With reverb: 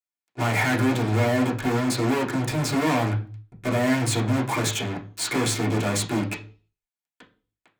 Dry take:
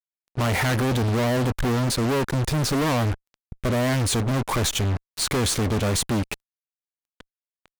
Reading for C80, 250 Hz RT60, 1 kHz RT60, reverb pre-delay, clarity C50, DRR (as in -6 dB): 17.5 dB, 0.45 s, 0.35 s, 3 ms, 12.5 dB, -5.5 dB